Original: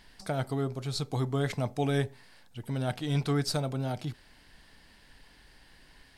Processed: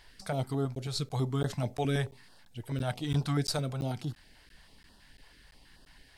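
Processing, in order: crackling interface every 0.34 s, samples 512, zero, from 0.75; stepped notch 9.2 Hz 220–2200 Hz

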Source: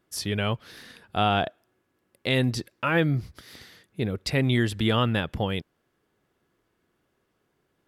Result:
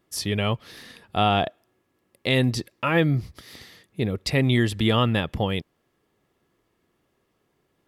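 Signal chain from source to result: notch 1500 Hz, Q 7.8; gain +2.5 dB

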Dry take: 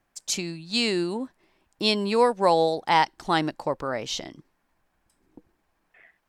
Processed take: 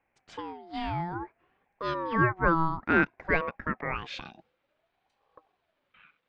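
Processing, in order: low-pass sweep 1400 Hz -> 3200 Hz, 3.77–4.33; ring modulator with a swept carrier 650 Hz, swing 25%, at 0.57 Hz; gain -3.5 dB

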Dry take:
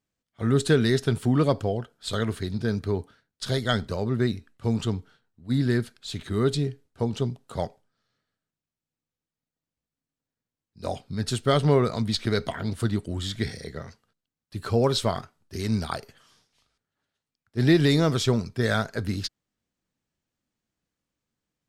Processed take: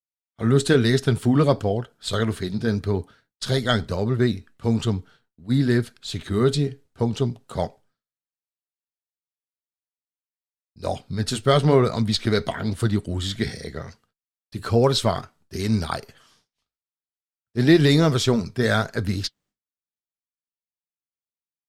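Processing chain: expander -57 dBFS; flange 1 Hz, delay 0.5 ms, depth 5.2 ms, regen -72%; gain +8 dB

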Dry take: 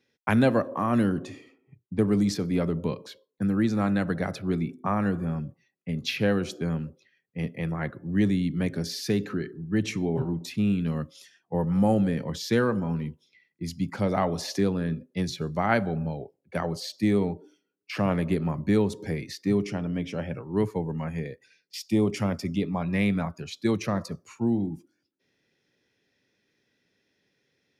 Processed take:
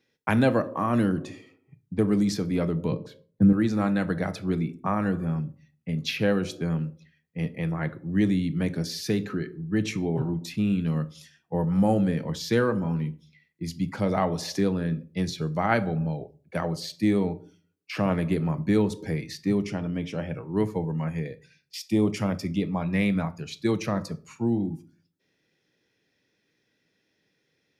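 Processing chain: 2.92–3.53 tilt shelf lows +9.5 dB, about 770 Hz; reverb RT60 0.35 s, pre-delay 6 ms, DRR 12 dB

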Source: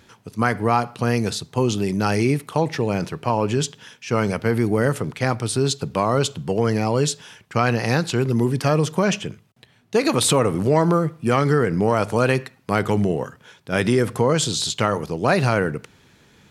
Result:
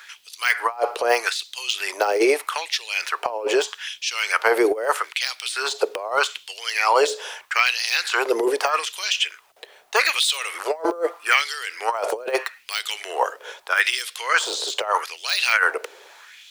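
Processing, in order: steep high-pass 350 Hz 36 dB/oct; de-esser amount 70%; LFO high-pass sine 0.8 Hz 470–3600 Hz; negative-ratio compressor -23 dBFS, ratio -0.5; requantised 12-bit, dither triangular; gain +4.5 dB

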